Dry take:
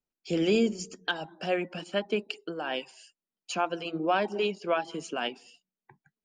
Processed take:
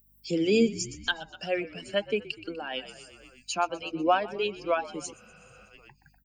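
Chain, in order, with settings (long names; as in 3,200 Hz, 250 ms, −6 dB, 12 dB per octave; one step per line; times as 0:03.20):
spectral dynamics exaggerated over time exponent 1.5
high-pass filter 150 Hz
high-shelf EQ 4,800 Hz +5 dB
echo with shifted repeats 123 ms, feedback 57%, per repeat −53 Hz, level −17.5 dB
in parallel at −1 dB: upward compression, threshold −30 dBFS
on the sum: mains hum 50 Hz, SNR 35 dB
healed spectral selection 0:05.15–0:05.66, 230–5,900 Hz after
amplitude modulation by smooth noise, depth 55%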